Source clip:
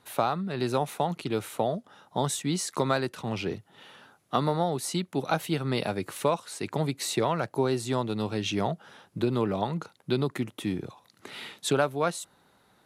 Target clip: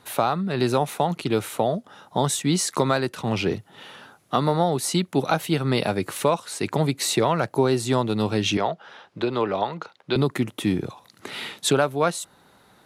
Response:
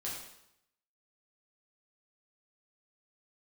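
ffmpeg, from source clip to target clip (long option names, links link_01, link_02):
-filter_complex "[0:a]asettb=1/sr,asplit=3[link_01][link_02][link_03];[link_01]atrim=end=8.574[link_04];[link_02]atrim=start=8.57:end=10.16,asetpts=PTS-STARTPTS,afade=type=in:duration=0.004:curve=qsin,afade=type=out:start_time=1.586:duration=0.004:curve=qsin,acrossover=split=400 5500:gain=0.251 1 0.0891[link_05][link_06][link_07];[link_05][link_06][link_07]amix=inputs=3:normalize=0[link_08];[link_03]atrim=start=10.156[link_09];[link_04][link_08]acrossfade=duration=0.004:curve1=hsin:curve2=qsin[link_10];[link_10][link_09]acrossfade=duration=0.004:curve1=qsin:curve2=hsin,asplit=2[link_11][link_12];[link_12]alimiter=limit=-19dB:level=0:latency=1:release=464,volume=3dB[link_13];[link_11][link_13]amix=inputs=2:normalize=0"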